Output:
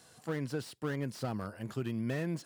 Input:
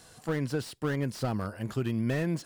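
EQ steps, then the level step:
high-pass filter 93 Hz
−5.0 dB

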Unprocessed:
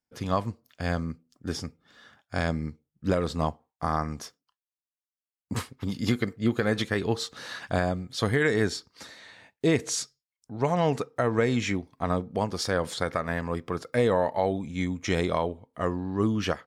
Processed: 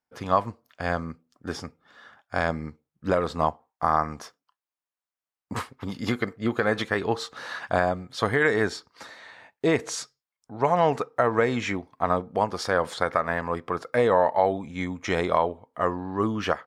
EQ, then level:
parametric band 1,000 Hz +11.5 dB 2.6 octaves
−4.5 dB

